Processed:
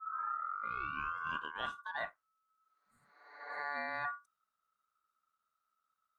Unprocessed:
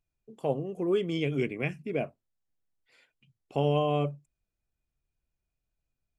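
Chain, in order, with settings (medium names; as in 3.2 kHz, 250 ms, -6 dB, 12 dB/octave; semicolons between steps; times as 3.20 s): tape start-up on the opening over 1.98 s; reverse; compression 6:1, threshold -35 dBFS, peak gain reduction 13.5 dB; reverse; ring modulator 1.3 kHz; spectral replace 2.60–3.57 s, 270–6700 Hz both; trim +1.5 dB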